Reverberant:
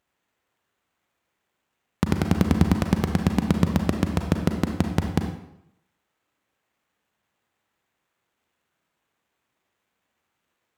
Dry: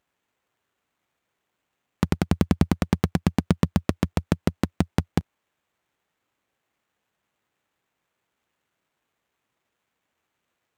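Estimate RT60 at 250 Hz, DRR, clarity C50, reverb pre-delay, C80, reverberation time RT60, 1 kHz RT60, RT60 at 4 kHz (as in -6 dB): 0.75 s, 4.5 dB, 6.5 dB, 33 ms, 9.0 dB, 0.80 s, 0.80 s, 0.65 s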